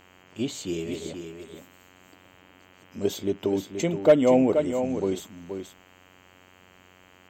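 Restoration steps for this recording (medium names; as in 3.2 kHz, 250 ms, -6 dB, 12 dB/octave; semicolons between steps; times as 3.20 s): clip repair -8 dBFS; de-hum 91.8 Hz, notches 35; inverse comb 477 ms -8 dB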